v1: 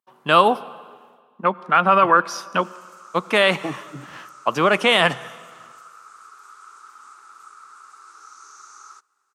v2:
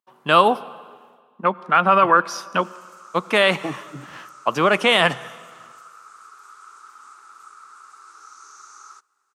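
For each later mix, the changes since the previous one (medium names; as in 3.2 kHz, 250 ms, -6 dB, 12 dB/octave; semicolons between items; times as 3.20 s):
no change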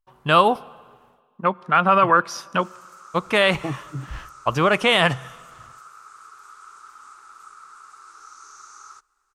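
speech: send -6.5 dB; master: remove high-pass 180 Hz 24 dB/octave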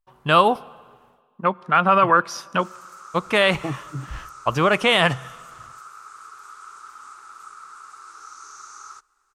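background +3.0 dB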